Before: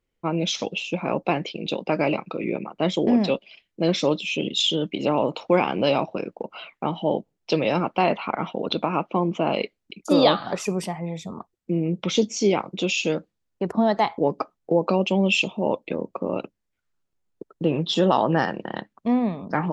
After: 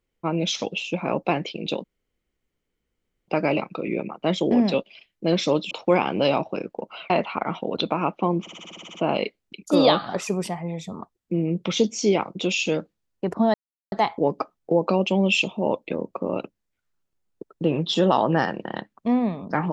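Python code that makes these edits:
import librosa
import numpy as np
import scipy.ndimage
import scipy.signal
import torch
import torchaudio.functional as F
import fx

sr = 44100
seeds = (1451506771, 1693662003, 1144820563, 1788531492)

y = fx.edit(x, sr, fx.insert_room_tone(at_s=1.84, length_s=1.44),
    fx.cut(start_s=4.27, length_s=1.06),
    fx.cut(start_s=6.72, length_s=1.3),
    fx.stutter(start_s=9.33, slice_s=0.06, count=10),
    fx.insert_silence(at_s=13.92, length_s=0.38), tone=tone)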